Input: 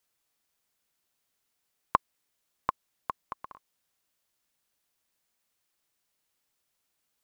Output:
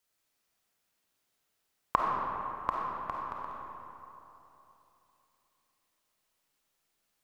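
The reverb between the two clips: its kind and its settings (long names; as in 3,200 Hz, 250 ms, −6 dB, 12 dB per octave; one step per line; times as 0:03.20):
comb and all-pass reverb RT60 3.2 s, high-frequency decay 0.55×, pre-delay 10 ms, DRR −3 dB
level −2.5 dB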